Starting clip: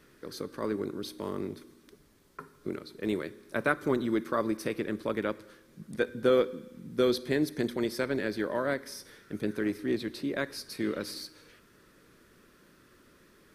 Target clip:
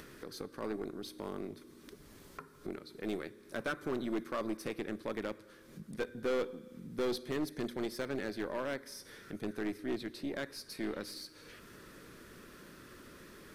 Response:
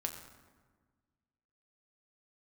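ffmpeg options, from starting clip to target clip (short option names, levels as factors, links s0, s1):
-af "aeval=exprs='0.316*(cos(1*acos(clip(val(0)/0.316,-1,1)))-cos(1*PI/2))+0.0355*(cos(6*acos(clip(val(0)/0.316,-1,1)))-cos(6*PI/2))':c=same,volume=12.6,asoftclip=hard,volume=0.0794,acompressor=mode=upward:threshold=0.0178:ratio=2.5,volume=0.501"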